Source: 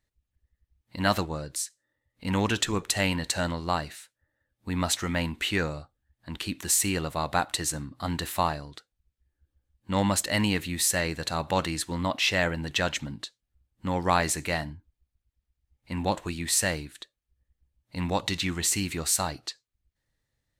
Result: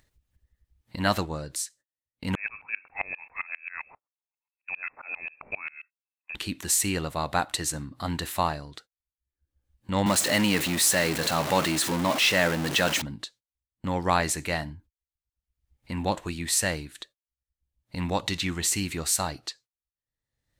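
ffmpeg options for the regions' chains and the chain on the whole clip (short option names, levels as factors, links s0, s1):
-filter_complex "[0:a]asettb=1/sr,asplit=3[s0][s1][s2];[s0]atrim=end=2.354[s3];[s1]atrim=start=2.35:end=6.35,asetpts=PTS-STARTPTS,afade=t=in:d=0.004:c=qsin,afade=t=out:st=3.996:d=0.004:c=qsin,lowpass=f=2300:t=q:w=0.5098,lowpass=f=2300:t=q:w=0.6013,lowpass=f=2300:t=q:w=0.9,lowpass=f=2300:t=q:w=2.563,afreqshift=-2700,aeval=exprs='val(0)*pow(10,-28*if(lt(mod(-7.5*n/s,1),2*abs(-7.5)/1000),1-mod(-7.5*n/s,1)/(2*abs(-7.5)/1000),(mod(-7.5*n/s,1)-2*abs(-7.5)/1000)/(1-2*abs(-7.5)/1000))/20)':c=same[s4];[s2]atrim=start=6.346[s5];[s3][s4]acrossfade=d=0.004:c1=hsin:c2=qsin[s6];[s6][s5]acrossfade=d=0.004:c1=qsin:c2=hsin,asettb=1/sr,asplit=3[s7][s8][s9];[s7]atrim=end=10.064[s10];[s8]atrim=start=10.06:end=13.02,asetpts=PTS-STARTPTS,afade=t=in:d=0.004:c=qsin,afade=t=out:st=2.956:d=0.004:c=qsin,aeval=exprs='val(0)+0.5*0.0631*sgn(val(0))':c=same,highpass=160[s11];[s9]atrim=start=13.016[s12];[s10][s11]acrossfade=d=0.004:c1=hsin:c2=qsin[s13];[s13][s12]acrossfade=d=0.004:c1=qsin:c2=hsin,agate=range=0.0141:threshold=0.00251:ratio=16:detection=peak,acompressor=mode=upward:threshold=0.0224:ratio=2.5"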